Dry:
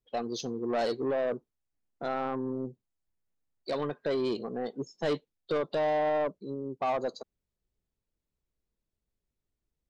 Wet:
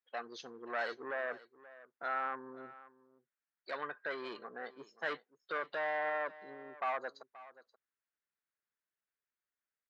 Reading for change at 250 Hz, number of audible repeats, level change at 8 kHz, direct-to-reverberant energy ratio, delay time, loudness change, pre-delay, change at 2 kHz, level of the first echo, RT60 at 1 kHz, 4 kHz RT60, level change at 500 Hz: -18.0 dB, 1, no reading, no reverb, 529 ms, -7.5 dB, no reverb, +3.5 dB, -18.0 dB, no reverb, no reverb, -11.5 dB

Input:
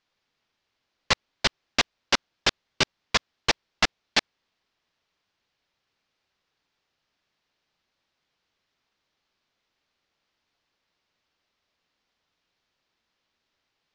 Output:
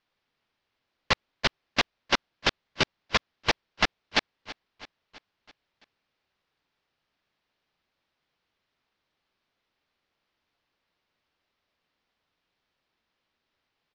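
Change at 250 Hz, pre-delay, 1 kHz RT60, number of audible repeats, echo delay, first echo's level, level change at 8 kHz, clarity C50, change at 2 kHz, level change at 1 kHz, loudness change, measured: 0.0 dB, no reverb, no reverb, 4, 330 ms, -18.0 dB, -7.0 dB, no reverb, -1.0 dB, -0.5 dB, -2.0 dB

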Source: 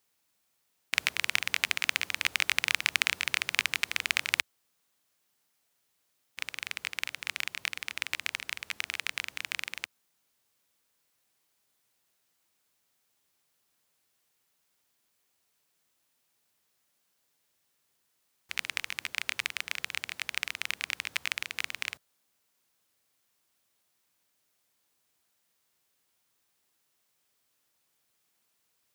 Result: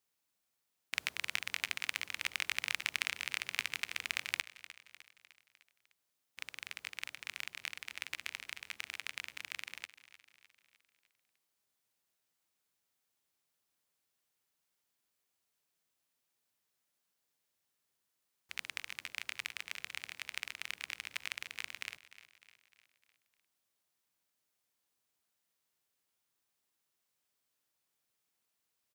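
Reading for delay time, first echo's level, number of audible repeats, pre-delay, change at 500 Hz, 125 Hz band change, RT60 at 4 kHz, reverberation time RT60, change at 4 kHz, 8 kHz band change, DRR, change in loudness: 303 ms, -16.0 dB, 4, no reverb, -8.5 dB, -8.5 dB, no reverb, no reverb, -8.5 dB, -8.5 dB, no reverb, -8.5 dB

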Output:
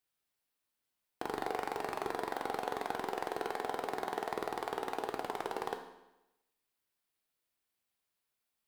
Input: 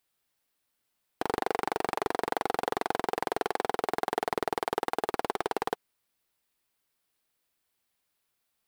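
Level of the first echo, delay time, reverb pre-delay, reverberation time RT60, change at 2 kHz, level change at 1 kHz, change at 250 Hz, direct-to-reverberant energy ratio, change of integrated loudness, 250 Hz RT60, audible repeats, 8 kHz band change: no echo, no echo, 11 ms, 0.95 s, -6.5 dB, -6.5 dB, -6.5 dB, 4.0 dB, -6.5 dB, 0.95 s, no echo, -7.0 dB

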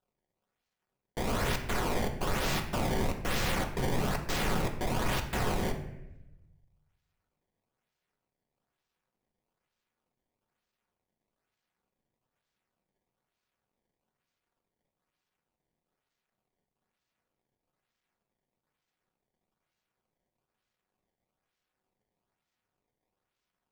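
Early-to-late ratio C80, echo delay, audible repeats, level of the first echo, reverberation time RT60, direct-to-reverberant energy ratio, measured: 11.5 dB, no echo, no echo, no echo, 0.95 s, 3.5 dB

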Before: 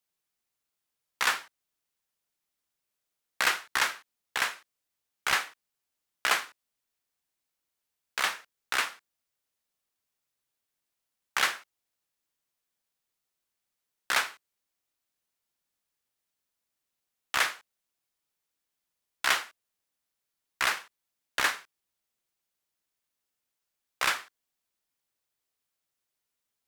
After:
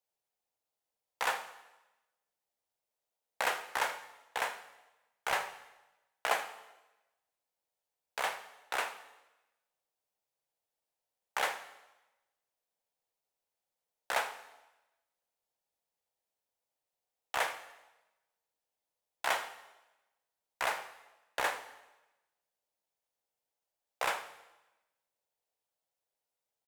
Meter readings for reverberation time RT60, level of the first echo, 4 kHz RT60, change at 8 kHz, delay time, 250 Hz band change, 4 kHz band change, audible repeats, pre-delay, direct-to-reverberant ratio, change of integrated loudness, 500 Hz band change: 1.0 s, -18.0 dB, 1.0 s, -8.5 dB, 79 ms, -6.0 dB, -9.5 dB, 1, 3 ms, 8.5 dB, -7.0 dB, +3.0 dB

